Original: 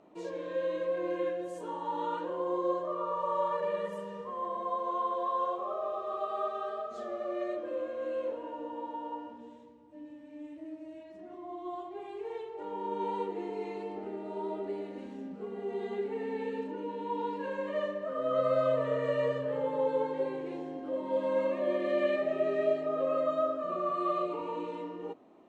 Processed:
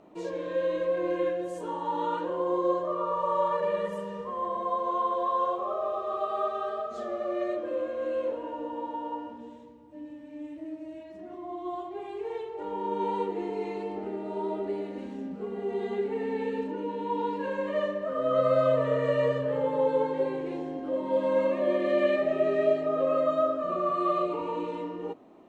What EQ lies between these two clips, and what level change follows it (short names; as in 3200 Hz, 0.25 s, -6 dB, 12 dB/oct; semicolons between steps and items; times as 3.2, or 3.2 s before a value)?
low shelf 120 Hz +6.5 dB; +4.0 dB